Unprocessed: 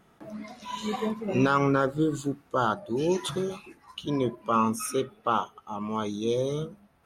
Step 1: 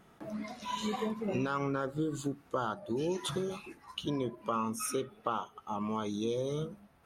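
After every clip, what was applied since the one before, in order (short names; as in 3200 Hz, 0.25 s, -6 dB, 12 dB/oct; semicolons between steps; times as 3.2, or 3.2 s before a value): compressor 4:1, threshold -31 dBFS, peak gain reduction 11.5 dB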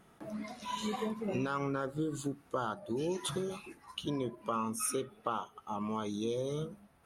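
bell 10000 Hz +6.5 dB 0.39 oct; gain -1.5 dB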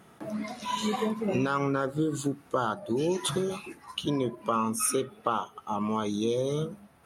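HPF 72 Hz; gain +7 dB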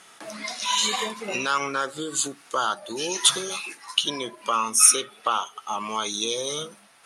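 weighting filter ITU-R 468; gain +4 dB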